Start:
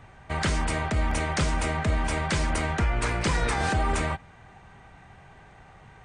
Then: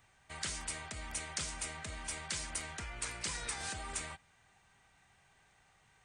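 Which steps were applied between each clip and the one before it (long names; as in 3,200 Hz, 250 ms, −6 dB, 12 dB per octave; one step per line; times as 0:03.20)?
first-order pre-emphasis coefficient 0.9
level −2 dB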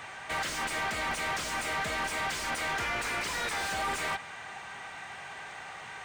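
mid-hump overdrive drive 36 dB, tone 1,900 Hz, clips at −22 dBFS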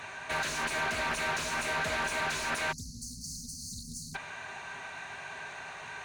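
EQ curve with evenly spaced ripples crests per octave 1.5, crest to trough 7 dB
time-frequency box erased 0:02.72–0:04.15, 270–4,300 Hz
highs frequency-modulated by the lows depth 0.23 ms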